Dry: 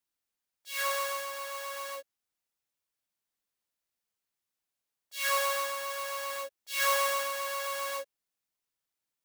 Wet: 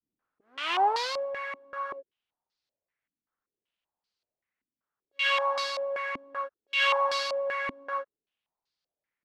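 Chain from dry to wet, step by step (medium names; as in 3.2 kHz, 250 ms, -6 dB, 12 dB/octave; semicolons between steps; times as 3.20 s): tape start-up on the opening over 1.16 s; step-sequenced low-pass 5.2 Hz 270–4500 Hz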